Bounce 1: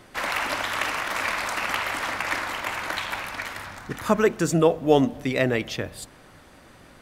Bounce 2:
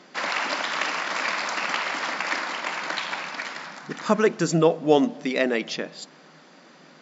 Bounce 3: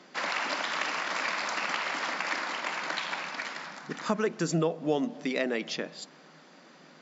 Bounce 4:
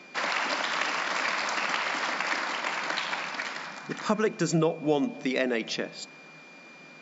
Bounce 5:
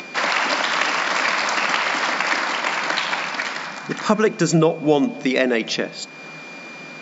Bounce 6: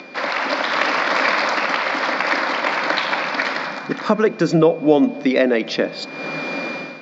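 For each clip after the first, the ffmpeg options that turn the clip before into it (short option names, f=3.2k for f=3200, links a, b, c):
-af "afftfilt=real='re*between(b*sr/4096,150,7600)':imag='im*between(b*sr/4096,150,7600)':win_size=4096:overlap=0.75,equalizer=f=4.8k:w=3.1:g=5"
-filter_complex "[0:a]acrossover=split=140[a][b];[b]acompressor=threshold=-23dB:ratio=2.5[c];[a][c]amix=inputs=2:normalize=0,volume=-3.5dB"
-af "aeval=exprs='val(0)+0.00251*sin(2*PI*2400*n/s)':c=same,volume=2.5dB"
-af "acompressor=mode=upward:threshold=-38dB:ratio=2.5,volume=8.5dB"
-af "dynaudnorm=f=130:g=5:m=14dB,highpass=140,equalizer=f=280:t=q:w=4:g=5,equalizer=f=540:t=q:w=4:g=6,equalizer=f=2.9k:t=q:w=4:g=-5,lowpass=f=4.9k:w=0.5412,lowpass=f=4.9k:w=1.3066,volume=-3dB"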